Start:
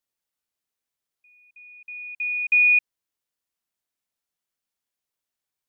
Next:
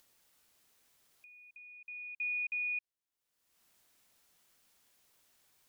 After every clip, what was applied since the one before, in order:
brickwall limiter −23.5 dBFS, peak gain reduction 10 dB
upward compression, threshold −41 dBFS
level −8.5 dB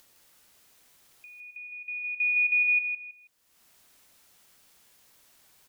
repeating echo 161 ms, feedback 27%, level −6 dB
level +8.5 dB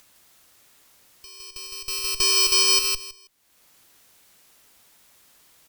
samples in bit-reversed order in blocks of 64 samples
harmonic generator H 4 −18 dB, 5 −16 dB, 7 −18 dB, 8 −16 dB, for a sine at −19 dBFS
level +5 dB

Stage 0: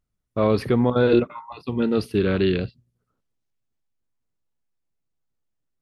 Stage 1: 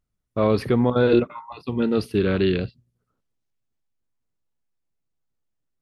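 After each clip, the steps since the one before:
no processing that can be heard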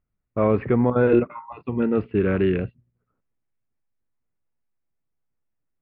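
Butterworth low-pass 2,500 Hz 36 dB per octave

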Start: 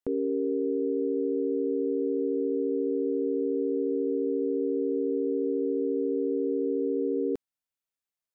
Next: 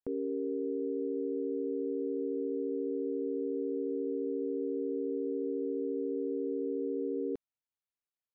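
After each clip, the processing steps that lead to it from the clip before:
high-frequency loss of the air 160 metres
level −6 dB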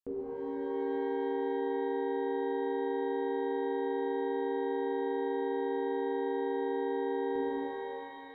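reverb with rising layers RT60 3.1 s, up +12 semitones, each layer −8 dB, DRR −6.5 dB
level −4.5 dB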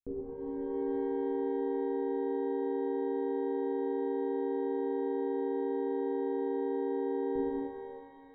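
spectral tilt −4 dB per octave
expander for the loud parts 1.5 to 1, over −38 dBFS
level −4 dB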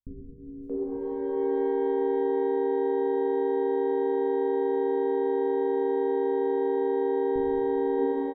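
multiband delay without the direct sound lows, highs 630 ms, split 230 Hz
level +8 dB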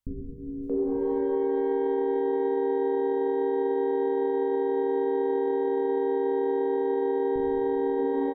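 brickwall limiter −25 dBFS, peak gain reduction 9 dB
level +6 dB

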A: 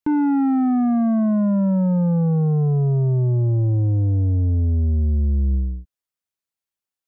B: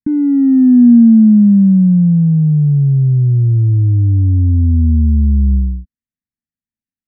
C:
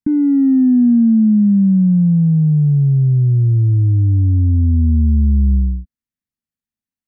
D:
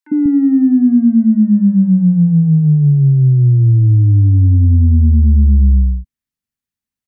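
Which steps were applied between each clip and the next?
drawn EQ curve 160 Hz 0 dB, 240 Hz +6 dB, 460 Hz −23 dB, 1,200 Hz −30 dB, 1,800 Hz −9 dB, 3,200 Hz −29 dB; level +7.5 dB
downward compressor 4 to 1, threshold −10 dBFS, peak gain reduction 6 dB
three-band delay without the direct sound highs, mids, lows 50/190 ms, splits 220/680 Hz; level +4 dB

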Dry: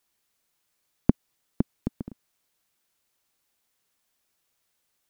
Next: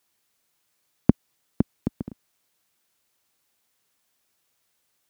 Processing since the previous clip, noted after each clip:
high-pass filter 53 Hz
level +3 dB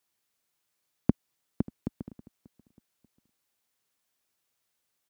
repeating echo 588 ms, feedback 33%, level −22 dB
level −7 dB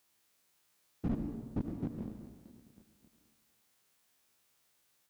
spectrum averaged block by block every 50 ms
convolution reverb RT60 1.6 s, pre-delay 68 ms, DRR 8 dB
slew-rate limiting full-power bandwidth 3.3 Hz
level +7 dB

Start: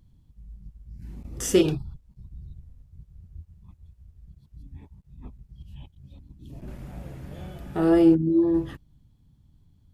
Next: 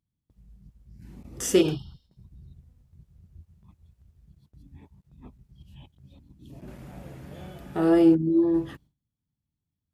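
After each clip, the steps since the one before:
healed spectral selection 0:01.68–0:02.17, 2,800–5,800 Hz both
noise gate with hold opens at −44 dBFS
high-pass filter 140 Hz 6 dB per octave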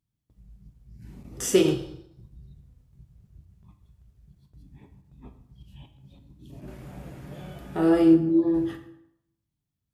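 dense smooth reverb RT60 0.77 s, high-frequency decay 0.75×, DRR 5.5 dB

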